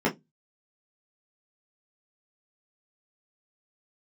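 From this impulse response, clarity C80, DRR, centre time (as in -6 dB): 29.0 dB, -5.5 dB, 16 ms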